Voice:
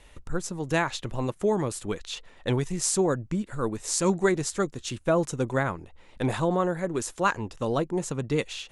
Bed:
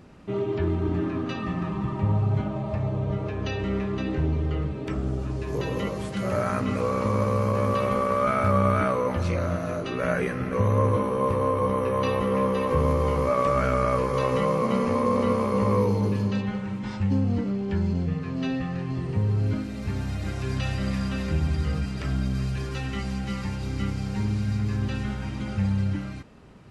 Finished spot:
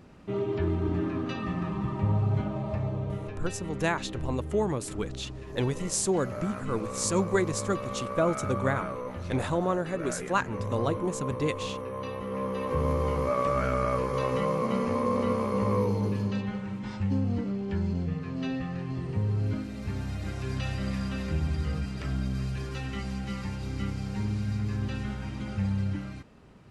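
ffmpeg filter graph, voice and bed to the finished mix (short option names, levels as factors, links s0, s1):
-filter_complex "[0:a]adelay=3100,volume=0.75[s0];[1:a]volume=1.68,afade=t=out:st=2.71:d=0.86:silence=0.375837,afade=t=in:st=12.21:d=0.73:silence=0.446684[s1];[s0][s1]amix=inputs=2:normalize=0"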